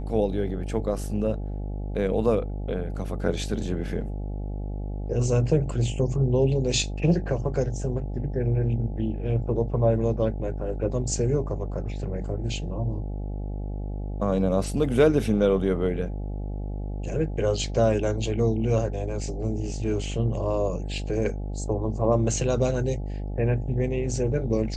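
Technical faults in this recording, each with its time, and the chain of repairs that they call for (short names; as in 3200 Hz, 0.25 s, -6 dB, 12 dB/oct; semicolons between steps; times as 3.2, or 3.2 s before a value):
buzz 50 Hz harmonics 17 -31 dBFS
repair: de-hum 50 Hz, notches 17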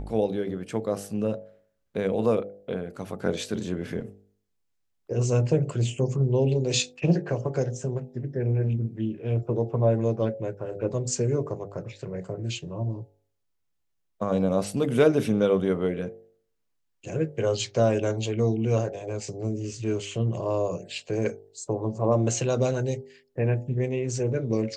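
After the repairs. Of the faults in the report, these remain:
none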